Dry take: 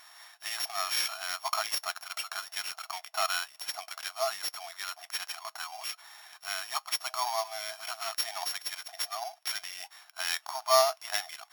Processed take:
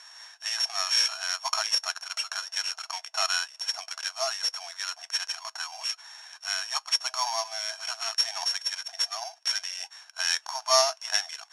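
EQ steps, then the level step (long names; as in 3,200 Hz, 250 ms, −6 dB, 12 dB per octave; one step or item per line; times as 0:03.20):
loudspeaker in its box 280–9,300 Hz, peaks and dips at 310 Hz +4 dB, 550 Hz +6 dB, 950 Hz +8 dB, 1,600 Hz +10 dB, 2,700 Hz +5 dB, 5,900 Hz +10 dB
parametric band 480 Hz +9.5 dB 0.42 octaves
high-shelf EQ 3,300 Hz +11 dB
−6.5 dB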